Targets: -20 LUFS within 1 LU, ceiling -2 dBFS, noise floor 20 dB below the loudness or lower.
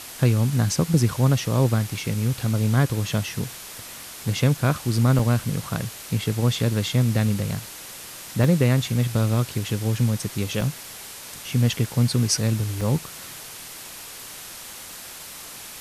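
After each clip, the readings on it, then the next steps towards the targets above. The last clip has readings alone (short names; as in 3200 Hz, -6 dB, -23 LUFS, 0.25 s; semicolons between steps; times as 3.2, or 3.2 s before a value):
dropouts 4; longest dropout 3.3 ms; noise floor -39 dBFS; noise floor target -43 dBFS; loudness -23.0 LUFS; peak -6.5 dBFS; loudness target -20.0 LUFS
-> interpolate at 5.19/8.44/10.61/12.81, 3.3 ms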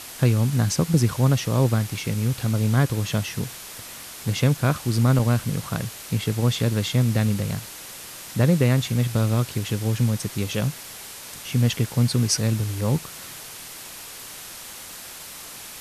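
dropouts 0; noise floor -39 dBFS; noise floor target -43 dBFS
-> noise print and reduce 6 dB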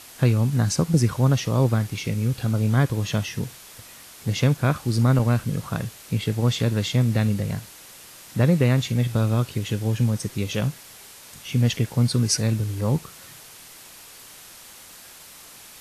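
noise floor -45 dBFS; loudness -23.0 LUFS; peak -6.5 dBFS; loudness target -20.0 LUFS
-> gain +3 dB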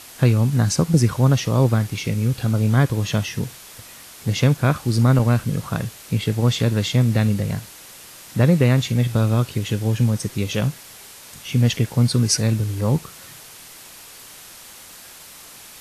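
loudness -20.0 LUFS; peak -3.5 dBFS; noise floor -42 dBFS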